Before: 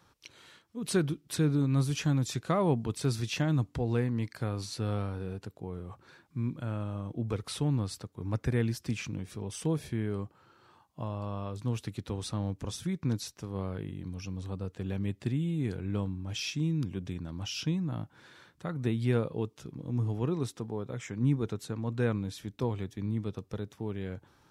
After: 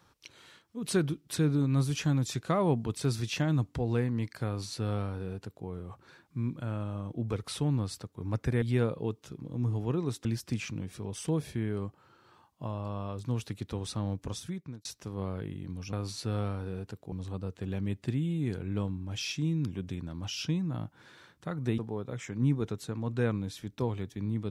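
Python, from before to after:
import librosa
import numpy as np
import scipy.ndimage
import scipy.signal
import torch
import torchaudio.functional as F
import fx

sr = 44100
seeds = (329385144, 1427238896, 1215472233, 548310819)

y = fx.edit(x, sr, fx.duplicate(start_s=4.47, length_s=1.19, to_s=14.3),
    fx.fade_out_span(start_s=12.67, length_s=0.55),
    fx.move(start_s=18.96, length_s=1.63, to_s=8.62), tone=tone)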